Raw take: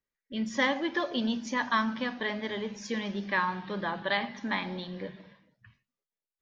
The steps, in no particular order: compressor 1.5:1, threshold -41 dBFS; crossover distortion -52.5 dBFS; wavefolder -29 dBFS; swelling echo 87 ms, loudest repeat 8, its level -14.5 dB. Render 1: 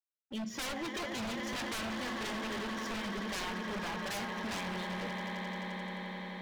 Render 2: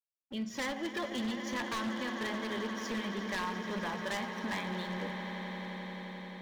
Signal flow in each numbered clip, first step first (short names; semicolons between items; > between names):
crossover distortion > swelling echo > wavefolder > compressor; crossover distortion > compressor > swelling echo > wavefolder